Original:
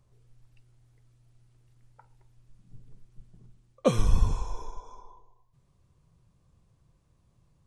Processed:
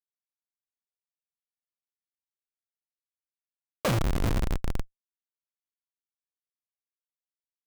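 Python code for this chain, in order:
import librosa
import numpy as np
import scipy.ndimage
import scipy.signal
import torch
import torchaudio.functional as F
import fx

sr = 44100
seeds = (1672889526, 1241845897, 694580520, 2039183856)

y = fx.cheby_harmonics(x, sr, harmonics=(2, 5, 6), levels_db=(-14, -9, -22), full_scale_db=-9.0)
y = fx.dmg_buzz(y, sr, base_hz=120.0, harmonics=5, level_db=-62.0, tilt_db=-4, odd_only=False)
y = fx.schmitt(y, sr, flips_db=-26.5)
y = y * 10.0 ** (4.0 / 20.0)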